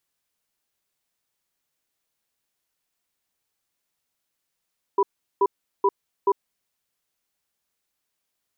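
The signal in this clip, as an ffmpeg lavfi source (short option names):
-f lavfi -i "aevalsrc='0.126*(sin(2*PI*397*t)+sin(2*PI*985*t))*clip(min(mod(t,0.43),0.05-mod(t,0.43))/0.005,0,1)':d=1.66:s=44100"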